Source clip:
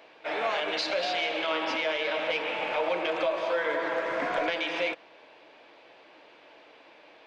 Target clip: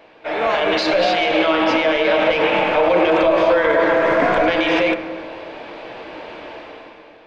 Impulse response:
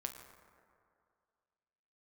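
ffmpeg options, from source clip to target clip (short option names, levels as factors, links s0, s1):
-filter_complex "[0:a]dynaudnorm=f=120:g=11:m=4.73,alimiter=limit=0.188:level=0:latency=1:release=107,asplit=2[s0][s1];[s1]aemphasis=mode=reproduction:type=riaa[s2];[1:a]atrim=start_sample=2205[s3];[s2][s3]afir=irnorm=-1:irlink=0,volume=1.58[s4];[s0][s4]amix=inputs=2:normalize=0,aresample=22050,aresample=44100"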